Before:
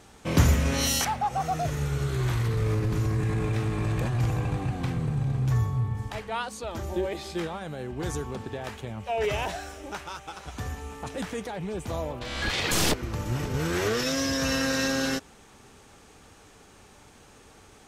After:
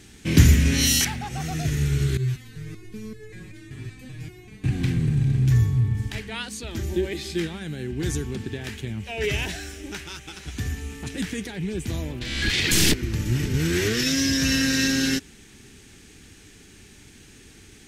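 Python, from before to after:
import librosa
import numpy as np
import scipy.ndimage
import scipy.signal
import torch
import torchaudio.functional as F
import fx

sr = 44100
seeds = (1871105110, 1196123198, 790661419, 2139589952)

y = fx.band_shelf(x, sr, hz=800.0, db=-15.0, octaves=1.7)
y = fx.resonator_held(y, sr, hz=5.2, low_hz=130.0, high_hz=430.0, at=(2.17, 4.64))
y = F.gain(torch.from_numpy(y), 6.0).numpy()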